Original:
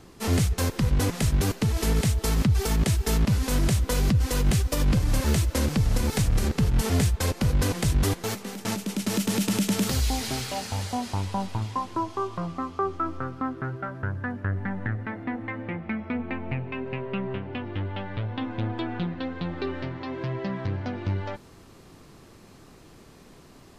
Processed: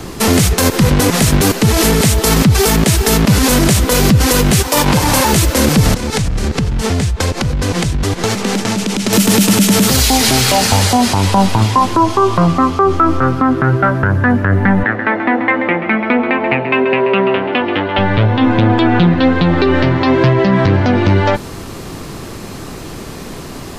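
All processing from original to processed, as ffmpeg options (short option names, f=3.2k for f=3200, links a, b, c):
-filter_complex "[0:a]asettb=1/sr,asplit=3[a][b][c];[a]atrim=end=4.624[d];[b]atrim=start=4.62:end=5.33,asetpts=PTS-STARTPTS,afade=t=in:d=0.004:c=qsin,afade=t=out:st=0.706:d=0.004:c=qsin,highpass=f=390:p=1,equalizer=f=900:t=o:w=0.21:g=12[e];[c]atrim=start=5.326[f];[d][e]acrossfade=d=0.004:c1=hsin:c2=qsin[g];[g][f]acrossfade=d=0.004:c1=qsin:c2=hsin,asettb=1/sr,asplit=3[h][i][j];[h]atrim=end=5.944[k];[i]atrim=start=5.94:end=9.13,asetpts=PTS-STARTPTS,afade=t=in:d=0.004:c=qsin,afade=t=out:st=3.186:d=0.004:c=qsin,lowpass=7.7k,acompressor=threshold=-33dB:ratio=20:attack=3.2:release=140:knee=1:detection=peak[l];[j]atrim=start=9.126[m];[k][l]acrossfade=d=0.004:c1=hsin:c2=qsin[n];[n][m]acrossfade=d=0.004:c1=qsin:c2=hsin,asettb=1/sr,asplit=3[o][p][q];[o]atrim=end=14.834[r];[p]atrim=start=14.83:end=17.98,asetpts=PTS-STARTPTS,afade=t=in:d=0.004:c=qsin,afade=t=out:st=3.146:d=0.004:c=qsin,highpass=340,lowpass=4.5k,aecho=1:1:133:0.282,atrim=end_sample=138915[s];[q]atrim=start=17.976[t];[r][s]acrossfade=d=0.004:c1=hsin:c2=qsin[u];[u][t]acrossfade=d=0.004:c1=qsin:c2=hsin,highshelf=f=11k:g=3.5,acrossover=split=150|3000[v][w][x];[v]acompressor=threshold=-35dB:ratio=6[y];[y][w][x]amix=inputs=3:normalize=0,alimiter=level_in=23.5dB:limit=-1dB:release=50:level=0:latency=1,volume=-1dB"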